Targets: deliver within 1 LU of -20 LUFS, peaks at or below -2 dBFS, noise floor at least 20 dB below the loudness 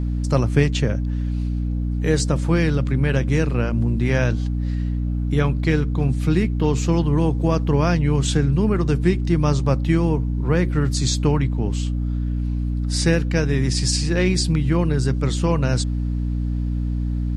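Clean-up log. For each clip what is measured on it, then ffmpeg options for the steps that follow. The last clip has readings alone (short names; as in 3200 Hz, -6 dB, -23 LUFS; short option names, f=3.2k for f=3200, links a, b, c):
hum 60 Hz; harmonics up to 300 Hz; hum level -20 dBFS; loudness -21.0 LUFS; peak -4.5 dBFS; loudness target -20.0 LUFS
-> -af "bandreject=f=60:t=h:w=6,bandreject=f=120:t=h:w=6,bandreject=f=180:t=h:w=6,bandreject=f=240:t=h:w=6,bandreject=f=300:t=h:w=6"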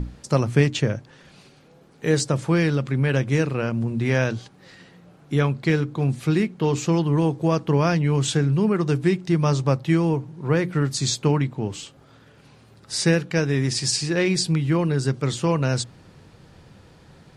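hum none; loudness -22.5 LUFS; peak -5.0 dBFS; loudness target -20.0 LUFS
-> -af "volume=2.5dB"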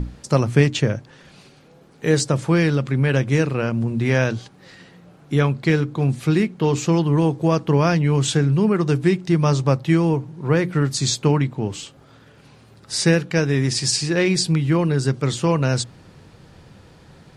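loudness -20.0 LUFS; peak -2.5 dBFS; noise floor -50 dBFS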